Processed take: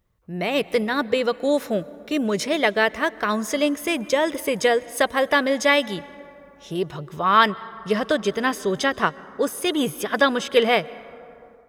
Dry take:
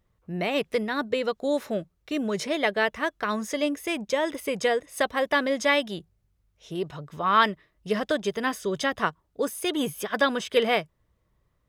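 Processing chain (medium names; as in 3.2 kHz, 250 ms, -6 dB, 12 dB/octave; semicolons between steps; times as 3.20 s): plate-style reverb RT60 3.3 s, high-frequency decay 0.35×, pre-delay 115 ms, DRR 19.5 dB; level rider gain up to 5 dB; treble shelf 11 kHz +5 dB, from 7.46 s -2 dB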